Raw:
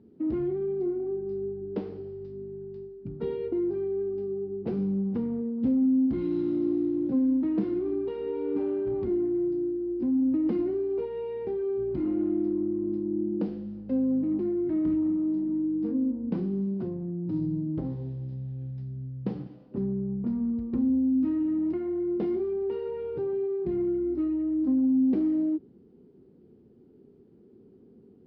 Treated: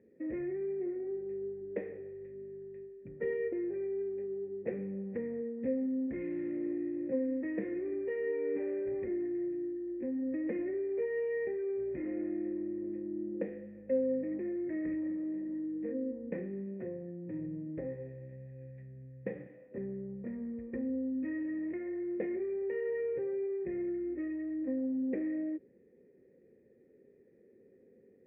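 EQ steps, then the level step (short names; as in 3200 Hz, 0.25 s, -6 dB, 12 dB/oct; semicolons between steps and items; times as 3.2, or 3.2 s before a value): vocal tract filter e; bell 2000 Hz +15 dB 0.9 oct; +6.5 dB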